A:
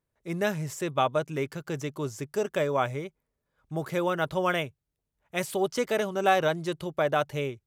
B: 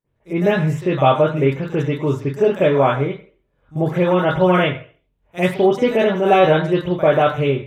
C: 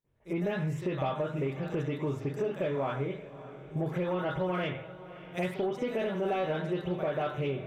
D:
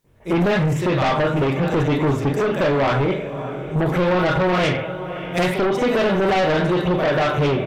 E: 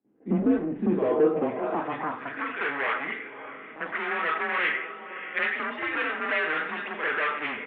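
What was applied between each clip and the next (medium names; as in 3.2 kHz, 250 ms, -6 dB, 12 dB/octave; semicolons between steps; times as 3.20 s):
reverberation, pre-delay 44 ms, DRR -15 dB; trim -5.5 dB
compression 4:1, threshold -25 dBFS, peak gain reduction 14.5 dB; saturation -16.5 dBFS, distortion -24 dB; echo that smears into a reverb 596 ms, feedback 46%, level -15 dB; trim -4.5 dB
in parallel at -8 dB: sine folder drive 10 dB, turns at -21.5 dBFS; on the sum: doubling 41 ms -12 dB; trim +8.5 dB
band-pass sweep 400 Hz -> 2 kHz, 0.91–2.46 s; mistuned SSB -150 Hz 370–3400 Hz; band-stop 920 Hz, Q 26; trim +2.5 dB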